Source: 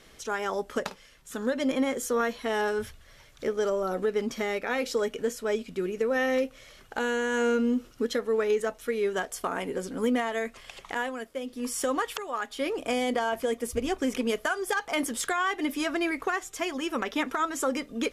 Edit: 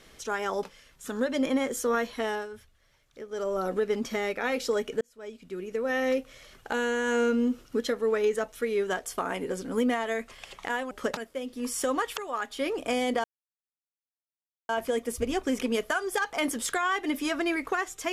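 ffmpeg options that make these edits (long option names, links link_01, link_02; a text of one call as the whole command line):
ffmpeg -i in.wav -filter_complex "[0:a]asplit=8[link_01][link_02][link_03][link_04][link_05][link_06][link_07][link_08];[link_01]atrim=end=0.632[link_09];[link_02]atrim=start=0.888:end=2.75,asetpts=PTS-STARTPTS,afade=type=out:start_time=1.572:duration=0.29:silence=0.237137[link_10];[link_03]atrim=start=2.75:end=3.54,asetpts=PTS-STARTPTS,volume=-12.5dB[link_11];[link_04]atrim=start=3.54:end=5.27,asetpts=PTS-STARTPTS,afade=type=in:duration=0.29:silence=0.237137,afade=type=out:start_time=1.726:duration=0.004:curve=hsin[link_12];[link_05]atrim=start=5.27:end=11.172,asetpts=PTS-STARTPTS,afade=type=in:duration=1.15[link_13];[link_06]atrim=start=0.628:end=0.892[link_14];[link_07]atrim=start=11.168:end=13.24,asetpts=PTS-STARTPTS,afade=type=out:start_time=2.068:duration=0.004:curve=hsin,apad=pad_dur=1.45[link_15];[link_08]atrim=start=13.24,asetpts=PTS-STARTPTS,afade=type=in:duration=0.004:curve=hsin[link_16];[link_10][link_11][link_12][link_13]concat=n=4:v=0:a=1[link_17];[link_09][link_17]acrossfade=duration=0.004:curve1=hsin:curve2=hsin[link_18];[link_18][link_14]acrossfade=duration=0.004:curve1=hsin:curve2=hsin[link_19];[link_15][link_16]concat=n=2:v=0:a=1[link_20];[link_19][link_20]acrossfade=duration=0.004:curve1=hsin:curve2=hsin" out.wav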